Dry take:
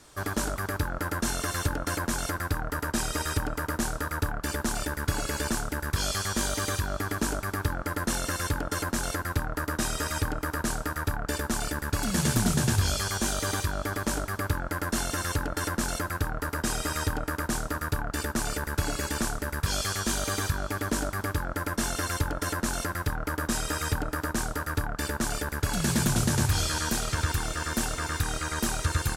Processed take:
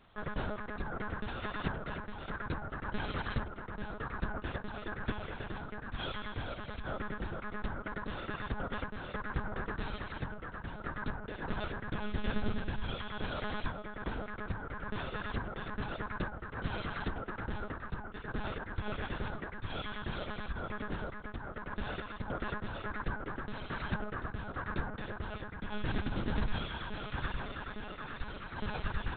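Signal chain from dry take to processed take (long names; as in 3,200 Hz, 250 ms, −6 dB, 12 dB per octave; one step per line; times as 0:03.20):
sample-and-hold tremolo
one-pitch LPC vocoder at 8 kHz 210 Hz
level −5.5 dB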